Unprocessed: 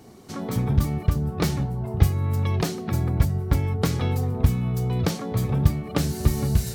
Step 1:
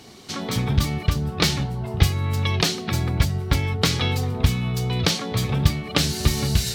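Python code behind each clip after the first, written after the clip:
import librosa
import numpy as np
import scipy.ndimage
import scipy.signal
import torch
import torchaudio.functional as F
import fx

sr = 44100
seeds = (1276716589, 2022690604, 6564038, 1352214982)

y = fx.peak_eq(x, sr, hz=3600.0, db=14.5, octaves=2.2)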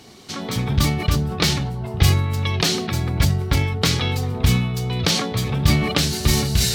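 y = fx.sustainer(x, sr, db_per_s=48.0)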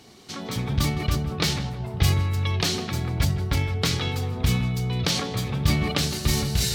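y = fx.echo_filtered(x, sr, ms=161, feedback_pct=41, hz=2900.0, wet_db=-11.5)
y = F.gain(torch.from_numpy(y), -5.0).numpy()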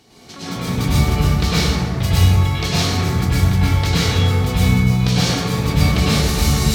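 y = fx.rev_plate(x, sr, seeds[0], rt60_s=2.0, hf_ratio=0.45, predelay_ms=90, drr_db=-10.0)
y = F.gain(torch.from_numpy(y), -2.5).numpy()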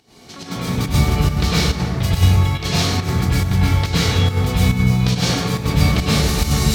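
y = fx.volume_shaper(x, sr, bpm=140, per_beat=1, depth_db=-8, release_ms=80.0, shape='slow start')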